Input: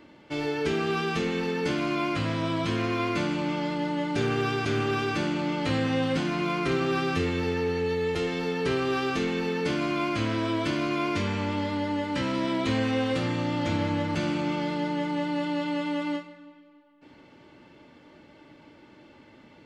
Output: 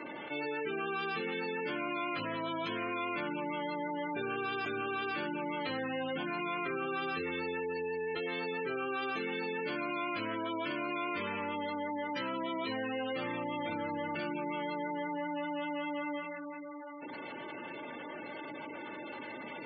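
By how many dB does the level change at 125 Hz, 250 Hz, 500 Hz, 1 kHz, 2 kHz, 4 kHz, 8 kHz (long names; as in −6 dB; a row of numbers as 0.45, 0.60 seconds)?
−18.5 dB, −11.0 dB, −8.0 dB, −4.5 dB, −4.5 dB, −8.5 dB, below −30 dB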